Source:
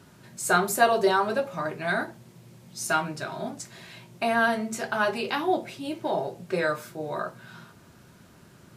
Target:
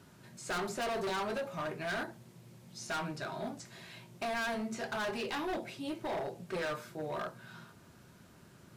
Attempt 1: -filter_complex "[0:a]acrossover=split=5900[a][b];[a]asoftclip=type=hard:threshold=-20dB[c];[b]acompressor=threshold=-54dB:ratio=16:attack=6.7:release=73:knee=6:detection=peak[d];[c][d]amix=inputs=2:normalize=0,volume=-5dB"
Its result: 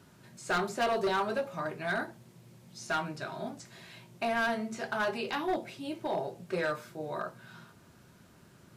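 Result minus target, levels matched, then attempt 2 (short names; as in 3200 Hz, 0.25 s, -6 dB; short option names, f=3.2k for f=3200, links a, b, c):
hard clip: distortion -7 dB
-filter_complex "[0:a]acrossover=split=5900[a][b];[a]asoftclip=type=hard:threshold=-28dB[c];[b]acompressor=threshold=-54dB:ratio=16:attack=6.7:release=73:knee=6:detection=peak[d];[c][d]amix=inputs=2:normalize=0,volume=-5dB"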